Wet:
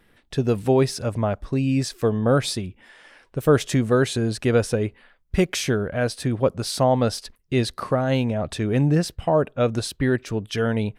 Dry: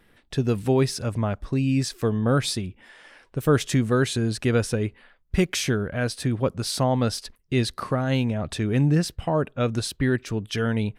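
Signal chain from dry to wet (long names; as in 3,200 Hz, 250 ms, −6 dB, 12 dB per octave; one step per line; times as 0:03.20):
dynamic equaliser 610 Hz, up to +6 dB, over −37 dBFS, Q 1.1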